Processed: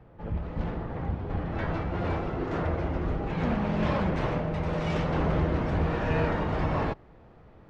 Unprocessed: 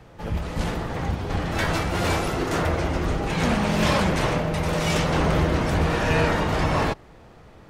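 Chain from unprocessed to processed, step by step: tape spacing loss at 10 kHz 41 dB, from 2.42 s at 10 kHz 33 dB, from 4.15 s at 10 kHz 27 dB; gain -4 dB

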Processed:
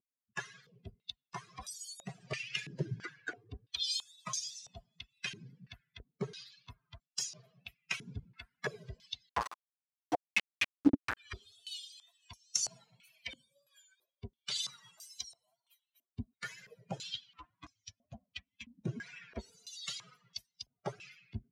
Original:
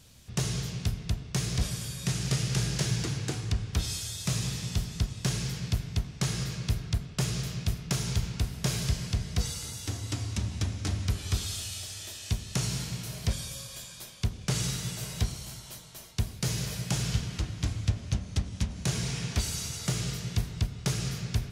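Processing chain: per-bin expansion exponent 3; vibrato 2 Hz 71 cents; 9.29–11.17 companded quantiser 2-bit; stepped band-pass 3 Hz 290–5800 Hz; gain +15.5 dB

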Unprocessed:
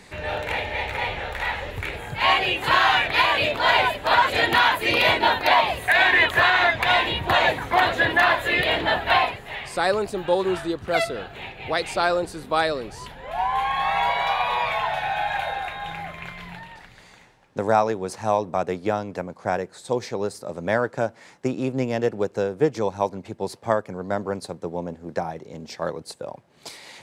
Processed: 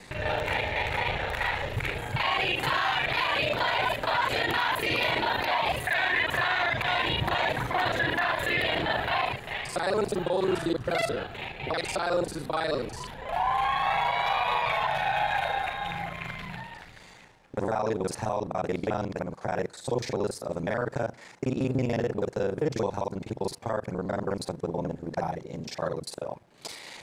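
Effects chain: local time reversal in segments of 36 ms; dynamic EQ 130 Hz, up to +6 dB, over -50 dBFS, Q 3.2; limiter -17.5 dBFS, peak gain reduction 11 dB

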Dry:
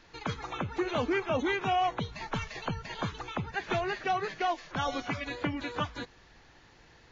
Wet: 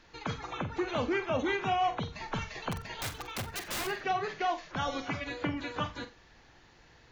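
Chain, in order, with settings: 2.71–3.87 wrapped overs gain 28.5 dB; flutter echo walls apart 7.7 m, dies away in 0.26 s; gain -1.5 dB

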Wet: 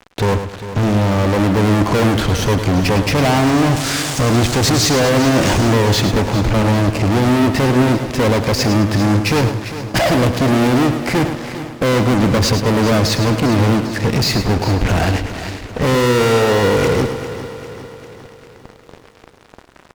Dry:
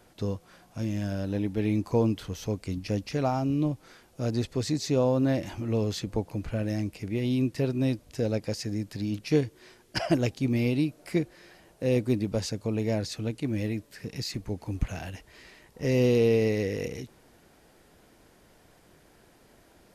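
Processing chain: 3.32–5.73 switching spikes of -27.5 dBFS; LPF 8100 Hz 24 dB/oct; high shelf 3000 Hz -12 dB; fuzz box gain 44 dB, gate -53 dBFS; feedback echo 0.105 s, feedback 33%, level -9 dB; lo-fi delay 0.4 s, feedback 55%, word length 9-bit, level -12.5 dB

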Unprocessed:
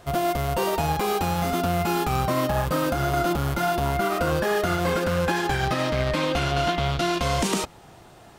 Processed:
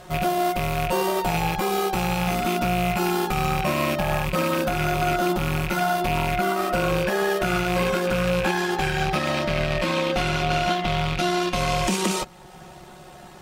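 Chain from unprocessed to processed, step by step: rattling part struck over -28 dBFS, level -19 dBFS; in parallel at 0 dB: compressor, threshold -35 dBFS, peak gain reduction 15 dB; on the sum: granular stretch 1.6×, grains 29 ms; one-sided clip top -15 dBFS

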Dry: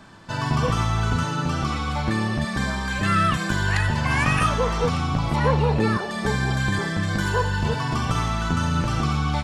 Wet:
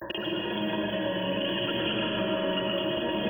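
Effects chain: random spectral dropouts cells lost 26%; ripple EQ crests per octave 1.3, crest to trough 15 dB; reverse; upward compressor, threshold -27 dBFS; reverse; FFT band-reject 1200–5000 Hz; resonant high shelf 2400 Hz -10.5 dB, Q 3; wide varispeed 2.86×; compressor 6:1, threshold -40 dBFS, peak gain reduction 23.5 dB; digital reverb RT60 4.5 s, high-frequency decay 0.6×, pre-delay 70 ms, DRR -3.5 dB; gain +6.5 dB

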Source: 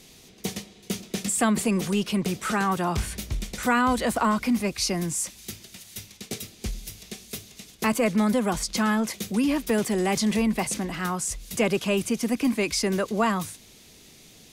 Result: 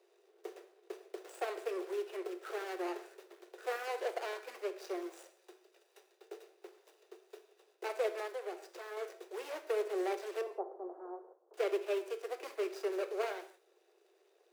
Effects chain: median filter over 41 samples; 10.41–11.54 steep low-pass 1100 Hz 36 dB/oct; non-linear reverb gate 0.21 s falling, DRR 8 dB; 8.27–8.97 compressor 2:1, threshold -32 dBFS, peak gain reduction 7 dB; Chebyshev high-pass 350 Hz, order 8; gain -6 dB

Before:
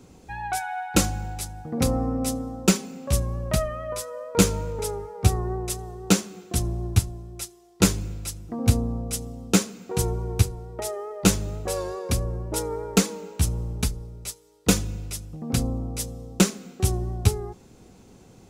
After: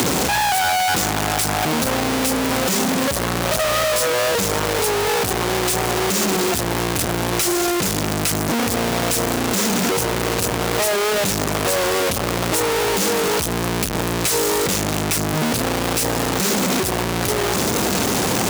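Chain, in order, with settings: infinite clipping; HPF 230 Hz 6 dB/oct; three-band squash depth 70%; gain +8 dB

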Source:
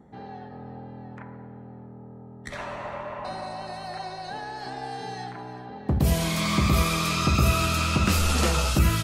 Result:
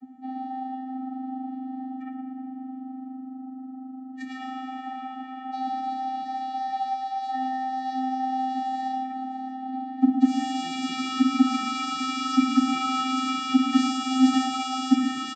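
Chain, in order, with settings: notch 1400 Hz, Q 7.2; in parallel at -11 dB: wrapped overs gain 13 dB; on the sum: vocoder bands 16, square 260 Hz; time stretch by phase-locked vocoder 1.7×; on a send: echo 0.113 s -9.5 dB; on the sum: gain +1.5 dB

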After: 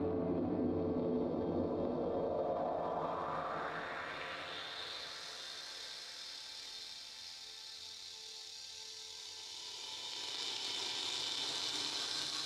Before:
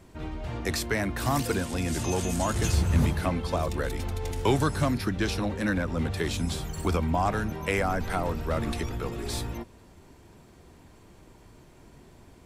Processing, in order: Paulstretch 9.3×, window 0.50 s, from 3.31; in parallel at -10 dB: requantised 8-bit, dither triangular; on the sum: added harmonics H 2 -13 dB, 3 -12 dB, 8 -29 dB, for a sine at -8 dBFS; reverb RT60 1.8 s, pre-delay 5 ms, DRR -0.5 dB; one-sided clip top -15 dBFS; band-pass sweep 400 Hz -> 5100 Hz, 2–5.22; limiter -34.5 dBFS, peak gain reduction 10 dB; bell 4000 Hz +10.5 dB 0.7 oct; diffused feedback echo 0.841 s, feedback 43%, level -10 dB; dynamic EQ 240 Hz, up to +6 dB, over -57 dBFS, Q 0.85; gain +3 dB

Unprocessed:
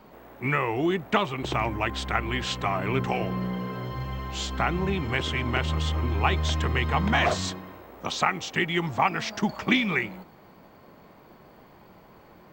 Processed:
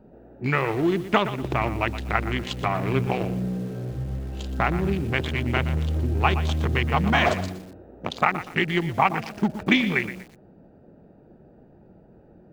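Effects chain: Wiener smoothing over 41 samples; lo-fi delay 0.12 s, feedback 35%, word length 7-bit, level -12 dB; gain +3.5 dB

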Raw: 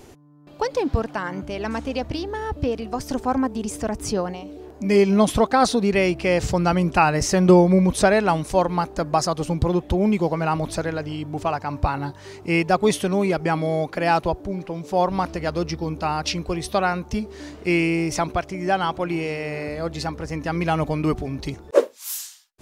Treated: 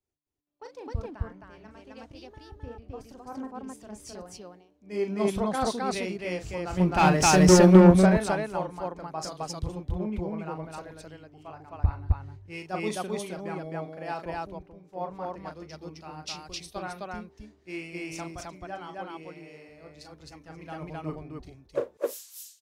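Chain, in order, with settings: 6.77–7.92 sample leveller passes 2; 11.48–12.24 resonant low shelf 120 Hz +7 dB, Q 3; wavefolder -3.5 dBFS; on a send: loudspeakers at several distances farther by 13 m -7 dB, 90 m 0 dB; on the sum: three-band expander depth 100%; gain -16 dB

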